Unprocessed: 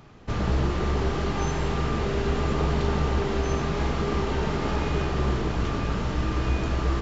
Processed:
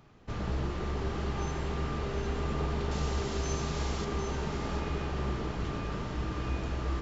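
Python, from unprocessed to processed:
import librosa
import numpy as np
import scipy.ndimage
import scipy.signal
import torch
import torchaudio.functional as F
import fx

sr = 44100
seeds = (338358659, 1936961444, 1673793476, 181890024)

y = fx.bass_treble(x, sr, bass_db=0, treble_db=13, at=(2.91, 4.05))
y = y + 10.0 ** (-8.0 / 20.0) * np.pad(y, (int(753 * sr / 1000.0), 0))[:len(y)]
y = y * 10.0 ** (-8.5 / 20.0)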